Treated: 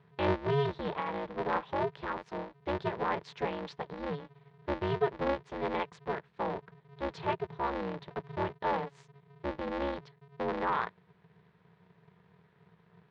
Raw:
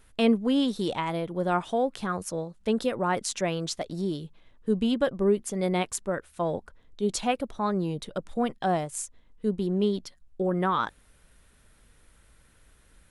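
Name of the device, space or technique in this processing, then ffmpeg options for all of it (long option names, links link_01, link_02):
ring modulator pedal into a guitar cabinet: -af "aeval=exprs='val(0)*sgn(sin(2*PI*140*n/s))':channel_layout=same,highpass=86,equalizer=frequency=170:width_type=q:width=4:gain=10,equalizer=frequency=270:width_type=q:width=4:gain=-8,equalizer=frequency=440:width_type=q:width=4:gain=7,equalizer=frequency=960:width_type=q:width=4:gain=8,equalizer=frequency=1800:width_type=q:width=4:gain=4,equalizer=frequency=2900:width_type=q:width=4:gain=-3,lowpass=frequency=3700:width=0.5412,lowpass=frequency=3700:width=1.3066,volume=-8.5dB"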